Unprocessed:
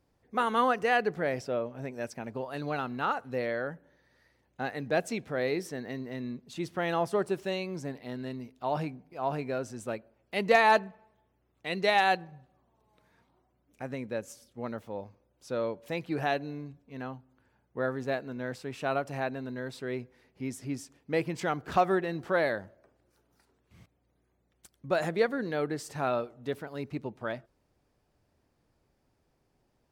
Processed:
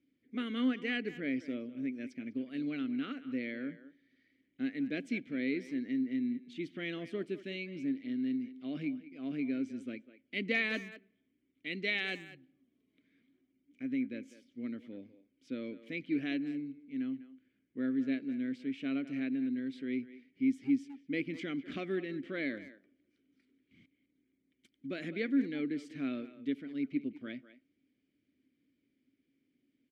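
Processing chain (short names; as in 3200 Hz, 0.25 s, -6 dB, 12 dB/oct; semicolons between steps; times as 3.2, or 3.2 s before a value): vowel filter i; speakerphone echo 0.2 s, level -14 dB; gain +8.5 dB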